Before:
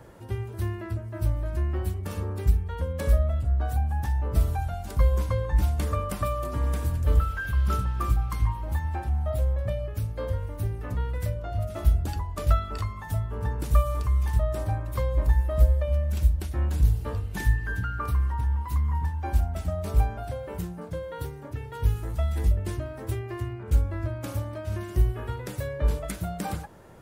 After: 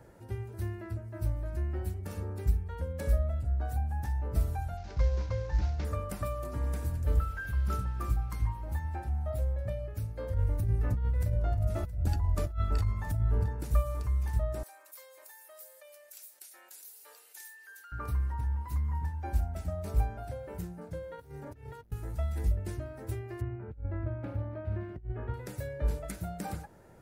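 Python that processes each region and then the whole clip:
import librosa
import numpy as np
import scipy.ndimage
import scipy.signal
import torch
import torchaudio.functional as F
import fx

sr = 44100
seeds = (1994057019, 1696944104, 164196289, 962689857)

y = fx.chain(x, sr, fx.cvsd(bps=32000),
    fx.peak_eq(hz=240.0, db=-7.5, octaves=0.45), at=(4.77, 5.85))
y = fx.chain(y, sr, fx.low_shelf(hz=120.0, db=11.5),
    fx.over_compress(threshold_db=-23.0, ratio=-1.0),
    fx.echo_single(ms=670, db=-16.0), at=(10.34, 13.48))
y = fx.chain(y, sr, fx.highpass(hz=390.0, slope=24),
    fx.differentiator(),
    fx.env_flatten(amount_pct=50), at=(14.63, 17.92))
y = fx.chain(y, sr, fx.clip_hard(threshold_db=-29.0),
    fx.over_compress(threshold_db=-40.0, ratio=-0.5), at=(21.15, 21.92))
y = fx.chain(y, sr, fx.over_compress(threshold_db=-27.0, ratio=-0.5),
    fx.air_absorb(metres=490.0), at=(23.41, 25.34))
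y = fx.peak_eq(y, sr, hz=3200.0, db=-5.5, octaves=0.57)
y = fx.notch(y, sr, hz=1100.0, q=6.6)
y = F.gain(torch.from_numpy(y), -6.0).numpy()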